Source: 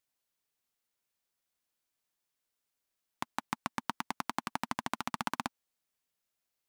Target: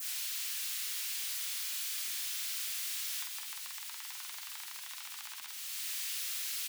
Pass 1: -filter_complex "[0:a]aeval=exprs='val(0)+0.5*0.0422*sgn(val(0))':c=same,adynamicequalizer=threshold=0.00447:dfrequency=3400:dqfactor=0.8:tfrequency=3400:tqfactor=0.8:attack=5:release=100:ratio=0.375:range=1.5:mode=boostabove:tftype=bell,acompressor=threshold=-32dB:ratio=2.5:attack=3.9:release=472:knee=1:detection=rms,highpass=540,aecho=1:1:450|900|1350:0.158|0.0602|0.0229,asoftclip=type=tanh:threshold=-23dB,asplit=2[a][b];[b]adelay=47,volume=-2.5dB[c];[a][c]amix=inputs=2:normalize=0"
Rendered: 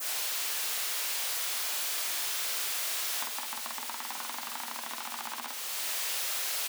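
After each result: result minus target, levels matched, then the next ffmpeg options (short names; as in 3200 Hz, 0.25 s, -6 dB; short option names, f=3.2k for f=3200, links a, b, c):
500 Hz band +18.5 dB; compressor: peak gain reduction -5 dB
-filter_complex "[0:a]aeval=exprs='val(0)+0.5*0.0422*sgn(val(0))':c=same,adynamicequalizer=threshold=0.00447:dfrequency=3400:dqfactor=0.8:tfrequency=3400:tqfactor=0.8:attack=5:release=100:ratio=0.375:range=1.5:mode=boostabove:tftype=bell,acompressor=threshold=-32dB:ratio=2.5:attack=3.9:release=472:knee=1:detection=rms,highpass=2k,aecho=1:1:450|900|1350:0.158|0.0602|0.0229,asoftclip=type=tanh:threshold=-23dB,asplit=2[a][b];[b]adelay=47,volume=-2.5dB[c];[a][c]amix=inputs=2:normalize=0"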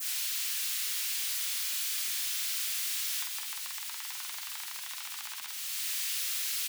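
compressor: peak gain reduction -5 dB
-filter_complex "[0:a]aeval=exprs='val(0)+0.5*0.0422*sgn(val(0))':c=same,adynamicequalizer=threshold=0.00447:dfrequency=3400:dqfactor=0.8:tfrequency=3400:tqfactor=0.8:attack=5:release=100:ratio=0.375:range=1.5:mode=boostabove:tftype=bell,acompressor=threshold=-40dB:ratio=2.5:attack=3.9:release=472:knee=1:detection=rms,highpass=2k,aecho=1:1:450|900|1350:0.158|0.0602|0.0229,asoftclip=type=tanh:threshold=-23dB,asplit=2[a][b];[b]adelay=47,volume=-2.5dB[c];[a][c]amix=inputs=2:normalize=0"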